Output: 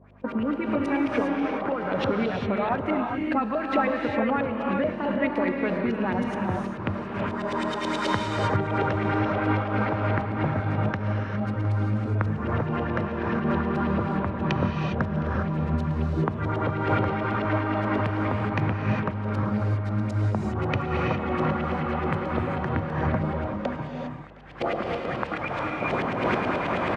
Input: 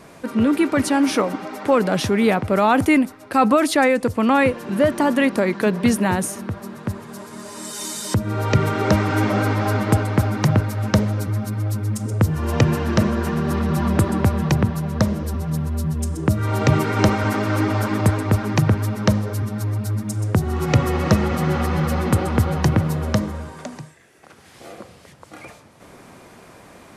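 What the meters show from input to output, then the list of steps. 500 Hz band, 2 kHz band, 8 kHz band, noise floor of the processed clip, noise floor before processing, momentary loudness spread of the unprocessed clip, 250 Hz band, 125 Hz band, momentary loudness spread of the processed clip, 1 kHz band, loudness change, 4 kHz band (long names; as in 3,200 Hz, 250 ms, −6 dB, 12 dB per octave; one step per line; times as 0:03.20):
−5.0 dB, −4.0 dB, below −20 dB, −33 dBFS, −46 dBFS, 9 LU, −6.0 dB, −7.0 dB, 4 LU, −3.5 dB, −6.5 dB, −8.0 dB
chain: camcorder AGC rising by 11 dB per second
noise gate −29 dBFS, range −12 dB
auto-filter low-pass saw up 9.3 Hz 510–3,300 Hz
downward compressor 4 to 1, threshold −21 dBFS, peak gain reduction 12 dB
mains hum 50 Hz, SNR 21 dB
high-pass filter 79 Hz 12 dB per octave
on a send: single-tap delay 713 ms −21.5 dB
on the sum: reverb whose tail is shaped and stops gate 430 ms rising, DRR 0.5 dB
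amplitude modulation by smooth noise, depth 65%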